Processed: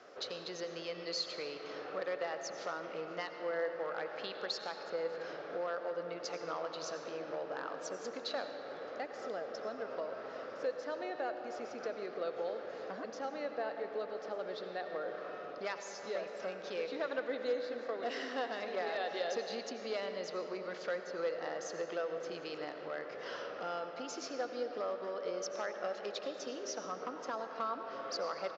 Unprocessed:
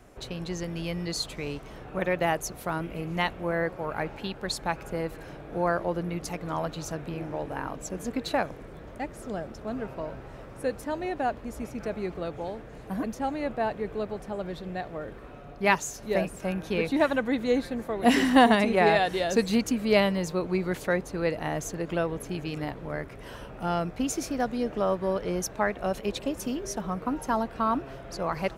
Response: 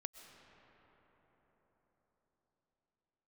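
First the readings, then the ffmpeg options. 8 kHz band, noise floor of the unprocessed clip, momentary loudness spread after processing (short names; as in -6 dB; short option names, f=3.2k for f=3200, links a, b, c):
-11.0 dB, -44 dBFS, 5 LU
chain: -filter_complex "[0:a]acompressor=threshold=-37dB:ratio=4,aresample=16000,aeval=exprs='clip(val(0),-1,0.0299)':c=same,aresample=44100,highpass=490,equalizer=f=500:t=q:w=4:g=7,equalizer=f=910:t=q:w=4:g=-6,equalizer=f=1.3k:t=q:w=4:g=5,equalizer=f=2.4k:t=q:w=4:g=-4,equalizer=f=4.9k:t=q:w=4:g=6,lowpass=f=5.8k:w=0.5412,lowpass=f=5.8k:w=1.3066[a];[1:a]atrim=start_sample=2205,asetrate=61740,aresample=44100[b];[a][b]afir=irnorm=-1:irlink=0,volume=8.5dB"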